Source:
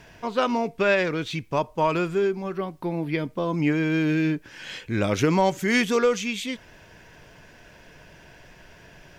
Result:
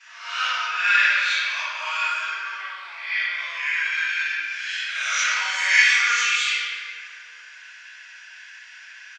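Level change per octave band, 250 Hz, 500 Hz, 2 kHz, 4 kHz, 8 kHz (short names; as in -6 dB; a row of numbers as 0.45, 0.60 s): under -40 dB, under -25 dB, +11.0 dB, +10.0 dB, +9.5 dB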